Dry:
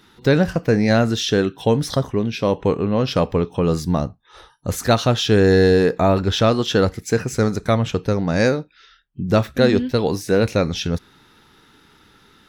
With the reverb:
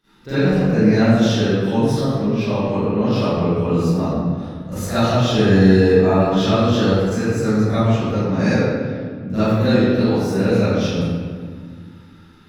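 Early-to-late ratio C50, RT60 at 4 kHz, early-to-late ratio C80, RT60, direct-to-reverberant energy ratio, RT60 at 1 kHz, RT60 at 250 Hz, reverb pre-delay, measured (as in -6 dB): -10.0 dB, 1.1 s, -3.5 dB, 1.8 s, -19.5 dB, 1.7 s, 2.8 s, 37 ms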